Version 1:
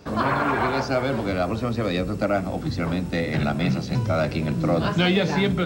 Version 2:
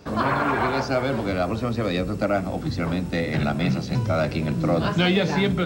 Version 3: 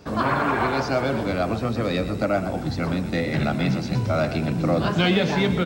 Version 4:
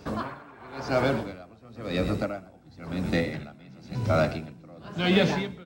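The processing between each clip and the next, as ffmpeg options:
-af anull
-filter_complex "[0:a]asplit=6[a][b][c][d][e][f];[b]adelay=119,afreqshift=39,volume=-12dB[g];[c]adelay=238,afreqshift=78,volume=-17.8dB[h];[d]adelay=357,afreqshift=117,volume=-23.7dB[i];[e]adelay=476,afreqshift=156,volume=-29.5dB[j];[f]adelay=595,afreqshift=195,volume=-35.4dB[k];[a][g][h][i][j][k]amix=inputs=6:normalize=0"
-af "aeval=exprs='val(0)*pow(10,-27*(0.5-0.5*cos(2*PI*0.96*n/s))/20)':c=same"

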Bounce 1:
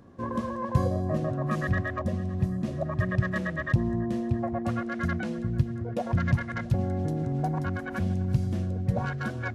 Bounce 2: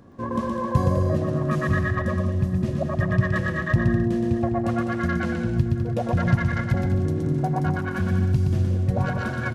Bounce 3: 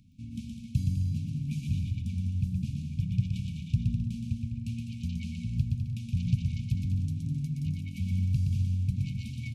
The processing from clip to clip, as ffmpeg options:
-af "aecho=1:1:120|204|262.8|304|332.8:0.631|0.398|0.251|0.158|0.1,volume=3dB"
-af "afftfilt=real='re*(1-between(b*sr/4096,280,2200))':imag='im*(1-between(b*sr/4096,280,2200))':win_size=4096:overlap=0.75,equalizer=f=270:t=o:w=0.94:g=-9,volume=-5dB"

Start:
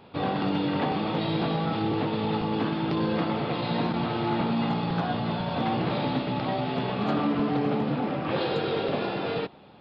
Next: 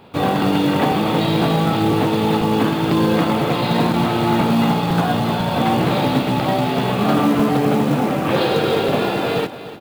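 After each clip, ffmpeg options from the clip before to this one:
-filter_complex "[0:a]asplit=2[a][b];[b]acrusher=bits=6:mix=0:aa=0.000001,volume=-6dB[c];[a][c]amix=inputs=2:normalize=0,aecho=1:1:294|588|882|1176:0.2|0.0938|0.0441|0.0207,acrusher=bits=6:mode=log:mix=0:aa=0.000001,volume=6dB"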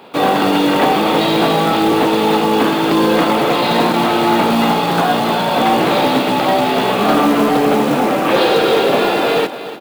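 -filter_complex "[0:a]highpass=290,asplit=2[a][b];[b]asoftclip=type=hard:threshold=-19.5dB,volume=-6dB[c];[a][c]amix=inputs=2:normalize=0,volume=3.5dB"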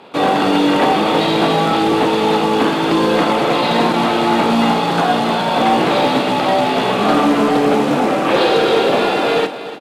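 -filter_complex "[0:a]lowpass=9.1k,asplit=2[a][b];[b]adelay=48,volume=-13dB[c];[a][c]amix=inputs=2:normalize=0,volume=-1dB"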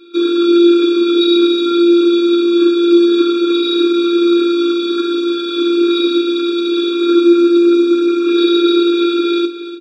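-af "afftfilt=real='hypot(re,im)*cos(PI*b)':imag='0':win_size=512:overlap=0.75,highpass=f=210:w=0.5412,highpass=f=210:w=1.3066,equalizer=f=340:t=q:w=4:g=9,equalizer=f=850:t=q:w=4:g=-8,equalizer=f=1.9k:t=q:w=4:g=9,equalizer=f=3.8k:t=q:w=4:g=10,lowpass=f=7.3k:w=0.5412,lowpass=f=7.3k:w=1.3066,afftfilt=real='re*eq(mod(floor(b*sr/1024/550),2),0)':imag='im*eq(mod(floor(b*sr/1024/550),2),0)':win_size=1024:overlap=0.75"

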